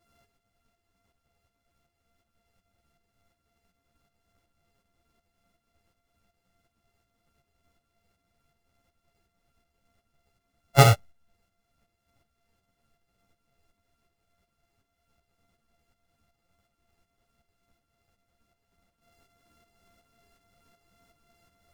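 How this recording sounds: a buzz of ramps at a fixed pitch in blocks of 64 samples; tremolo saw up 2.7 Hz, depth 60%; a shimmering, thickened sound

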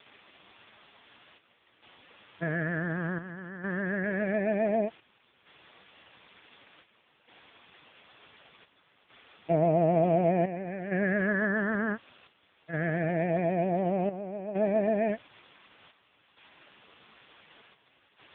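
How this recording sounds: phasing stages 8, 0.23 Hz, lowest notch 670–1600 Hz; a quantiser's noise floor 8-bit, dither triangular; chopped level 0.55 Hz, depth 65%, duty 75%; AMR-NB

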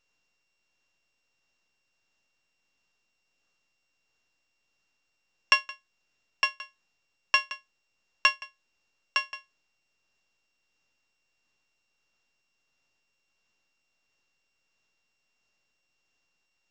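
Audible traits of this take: a buzz of ramps at a fixed pitch in blocks of 16 samples; tremolo triangle 1.5 Hz, depth 55%; µ-law

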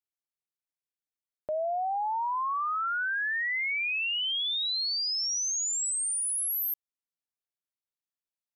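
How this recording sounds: noise floor -95 dBFS; spectral tilt -3.0 dB/oct

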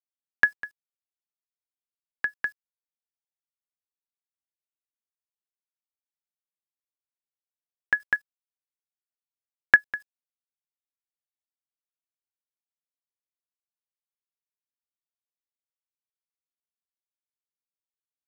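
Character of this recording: a quantiser's noise floor 10-bit, dither none; chopped level 2.5 Hz, depth 60%, duty 40%

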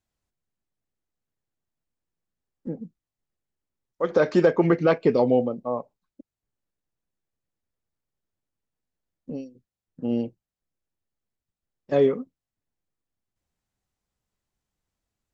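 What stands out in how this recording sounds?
noise floor -91 dBFS; spectral tilt -5.0 dB/oct

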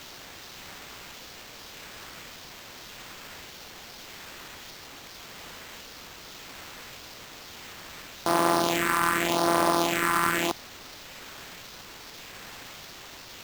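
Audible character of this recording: a quantiser's noise floor 8-bit, dither triangular; phasing stages 4, 0.86 Hz, lowest notch 570–3300 Hz; aliases and images of a low sample rate 10000 Hz, jitter 0%

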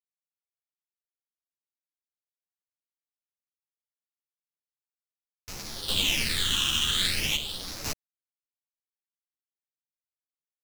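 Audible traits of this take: phasing stages 8, 0.41 Hz, lowest notch 620–3200 Hz; a quantiser's noise floor 6-bit, dither none; chopped level 0.51 Hz, depth 65%, duty 75%; a shimmering, thickened sound

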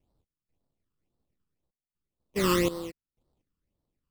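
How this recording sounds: aliases and images of a low sample rate 1600 Hz, jitter 20%; phasing stages 12, 1.9 Hz, lowest notch 650–2400 Hz; random-step tremolo 4.1 Hz, depth 95%

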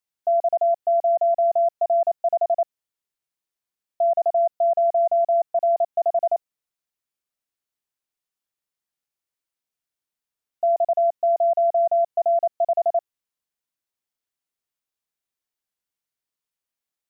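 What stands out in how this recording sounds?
noise floor -89 dBFS; spectral tilt -7.0 dB/oct

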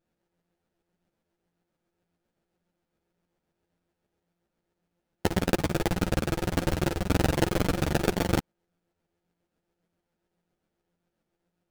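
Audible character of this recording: a buzz of ramps at a fixed pitch in blocks of 256 samples; tremolo saw up 7.4 Hz, depth 55%; aliases and images of a low sample rate 1100 Hz, jitter 20%; a shimmering, thickened sound

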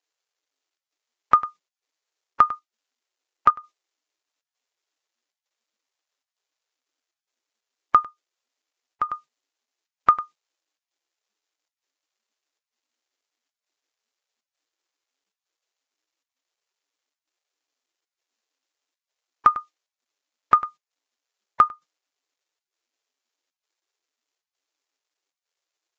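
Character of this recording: a quantiser's noise floor 12-bit, dither none; chopped level 1.1 Hz, depth 65%, duty 85%; Vorbis

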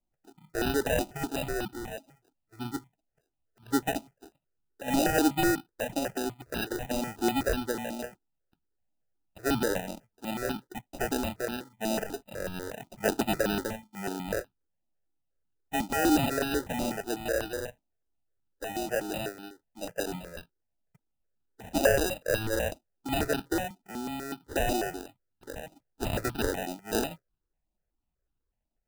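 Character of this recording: aliases and images of a low sample rate 1100 Hz, jitter 0%; notches that jump at a steady rate 8.1 Hz 450–2000 Hz

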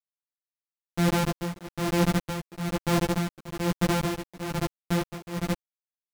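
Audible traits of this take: a buzz of ramps at a fixed pitch in blocks of 256 samples; tremolo triangle 1.1 Hz, depth 100%; a quantiser's noise floor 8-bit, dither none; a shimmering, thickened sound

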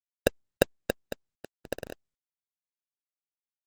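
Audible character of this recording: aliases and images of a low sample rate 1100 Hz, jitter 0%; random-step tremolo 2.9 Hz, depth 85%; a quantiser's noise floor 6-bit, dither none; Opus

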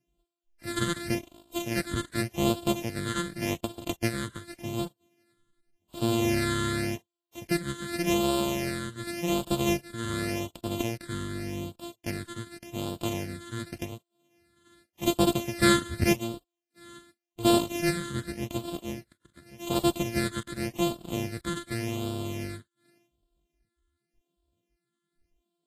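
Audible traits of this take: a buzz of ramps at a fixed pitch in blocks of 128 samples; phasing stages 8, 0.87 Hz, lowest notch 740–1900 Hz; Vorbis

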